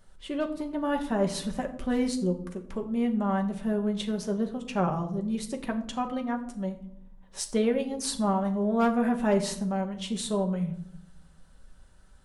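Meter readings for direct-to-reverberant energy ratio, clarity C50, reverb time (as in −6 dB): 3.0 dB, 12.0 dB, 0.70 s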